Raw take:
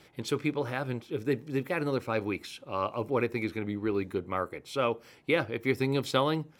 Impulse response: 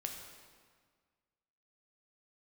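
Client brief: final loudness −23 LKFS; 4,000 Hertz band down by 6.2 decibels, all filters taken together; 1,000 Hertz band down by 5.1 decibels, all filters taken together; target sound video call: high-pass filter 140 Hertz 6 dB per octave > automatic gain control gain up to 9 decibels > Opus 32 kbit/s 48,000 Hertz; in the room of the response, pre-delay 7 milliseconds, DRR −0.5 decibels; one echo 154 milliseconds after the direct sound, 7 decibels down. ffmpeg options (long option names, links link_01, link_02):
-filter_complex "[0:a]equalizer=frequency=1000:width_type=o:gain=-6,equalizer=frequency=4000:width_type=o:gain=-7.5,aecho=1:1:154:0.447,asplit=2[link_01][link_02];[1:a]atrim=start_sample=2205,adelay=7[link_03];[link_02][link_03]afir=irnorm=-1:irlink=0,volume=1.5dB[link_04];[link_01][link_04]amix=inputs=2:normalize=0,highpass=frequency=140:poles=1,dynaudnorm=maxgain=9dB,volume=6dB" -ar 48000 -c:a libopus -b:a 32k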